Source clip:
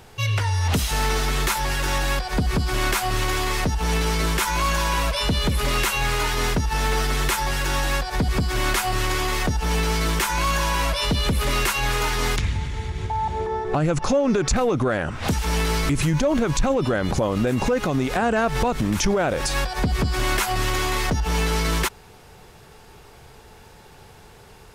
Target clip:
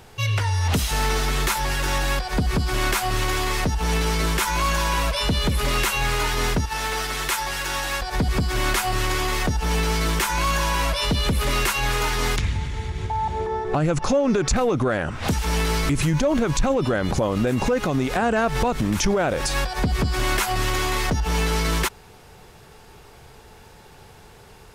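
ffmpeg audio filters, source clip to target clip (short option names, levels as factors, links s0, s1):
-filter_complex "[0:a]asettb=1/sr,asplit=3[s0][s1][s2];[s0]atrim=end=6.654[s3];[s1]atrim=start=6.65:end=8.02,asetpts=PTS-STARTPTS,afade=t=in:d=0.004:c=qsin,afade=t=out:st=1.366:d=0.004:c=qsin,lowshelf=f=380:g=-10.5[s4];[s2]atrim=start=8.016[s5];[s3][s4]acrossfade=d=0.004:c1=hsin:c2=qsin[s6];[s6][s5]acrossfade=d=0.004:c1=qsin:c2=hsin"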